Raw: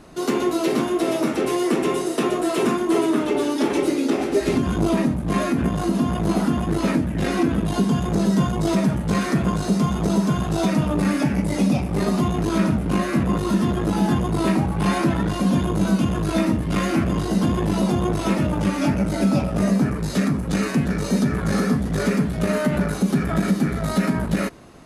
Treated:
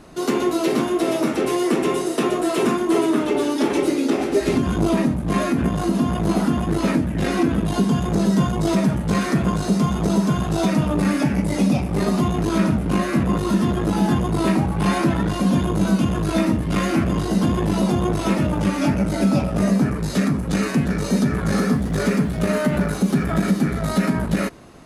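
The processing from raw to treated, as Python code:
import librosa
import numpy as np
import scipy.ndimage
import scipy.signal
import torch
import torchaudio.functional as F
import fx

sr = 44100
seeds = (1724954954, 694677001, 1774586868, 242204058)

y = fx.quant_dither(x, sr, seeds[0], bits=10, dither='none', at=(21.58, 23.57))
y = y * librosa.db_to_amplitude(1.0)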